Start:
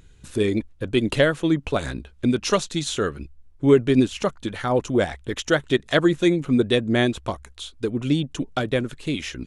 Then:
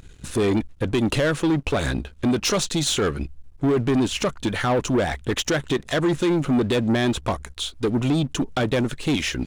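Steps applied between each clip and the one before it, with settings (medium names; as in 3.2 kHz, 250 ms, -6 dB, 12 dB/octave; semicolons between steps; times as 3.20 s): peak limiter -15 dBFS, peak gain reduction 10.5 dB; waveshaping leveller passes 2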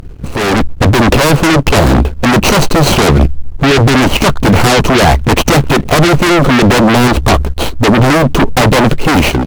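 median filter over 25 samples; in parallel at -5.5 dB: sine folder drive 12 dB, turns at -15 dBFS; on the sum: level rider gain up to 9.5 dB; trim +4.5 dB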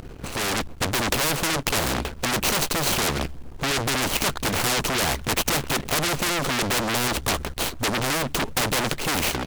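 spectrum-flattening compressor 2:1; trim -3.5 dB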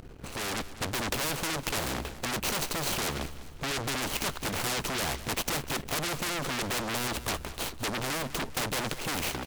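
feedback delay 200 ms, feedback 46%, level -15.5 dB; trim -8 dB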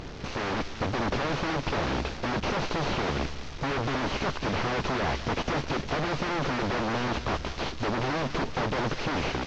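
one-bit delta coder 32 kbps, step -41.5 dBFS; trim +5.5 dB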